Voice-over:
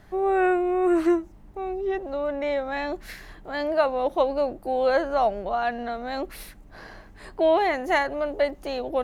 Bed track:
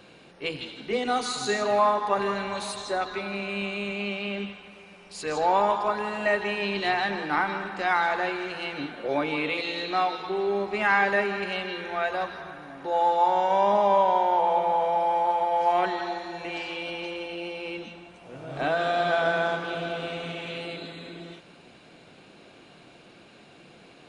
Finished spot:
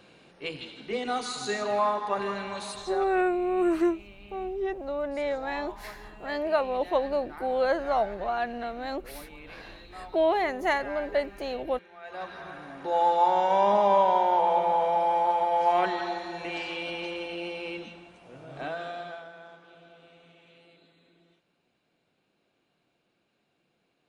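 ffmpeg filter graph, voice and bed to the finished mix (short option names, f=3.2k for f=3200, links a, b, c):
-filter_complex "[0:a]adelay=2750,volume=-3.5dB[a];[1:a]volume=15dB,afade=t=out:st=2.79:d=0.45:silence=0.16788,afade=t=in:st=12.02:d=0.53:silence=0.112202,afade=t=out:st=17.53:d=1.75:silence=0.0794328[b];[a][b]amix=inputs=2:normalize=0"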